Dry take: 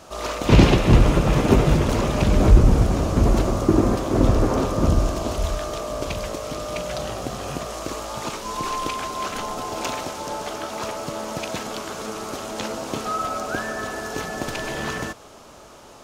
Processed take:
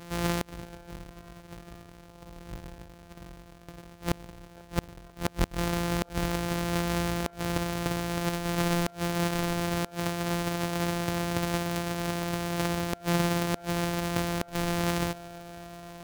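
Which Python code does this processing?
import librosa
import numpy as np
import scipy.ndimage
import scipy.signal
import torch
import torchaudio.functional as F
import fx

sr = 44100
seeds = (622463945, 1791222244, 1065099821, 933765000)

y = np.r_[np.sort(x[:len(x) // 256 * 256].reshape(-1, 256), axis=1).ravel(), x[len(x) // 256 * 256:]]
y = fx.gate_flip(y, sr, shuts_db=-13.0, range_db=-30)
y = fx.echo_wet_bandpass(y, sr, ms=492, feedback_pct=81, hz=790.0, wet_db=-22.0)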